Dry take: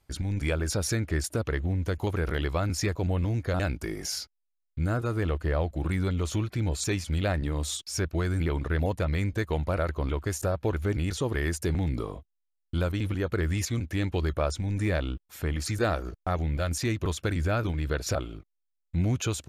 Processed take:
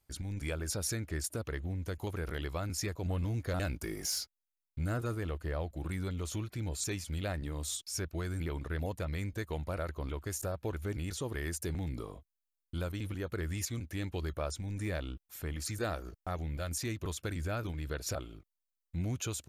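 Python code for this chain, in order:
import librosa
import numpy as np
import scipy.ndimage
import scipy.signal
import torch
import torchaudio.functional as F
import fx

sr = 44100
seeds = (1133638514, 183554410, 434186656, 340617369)

y = fx.high_shelf(x, sr, hz=7200.0, db=11.0)
y = fx.leveller(y, sr, passes=1, at=(3.05, 5.15))
y = F.gain(torch.from_numpy(y), -9.0).numpy()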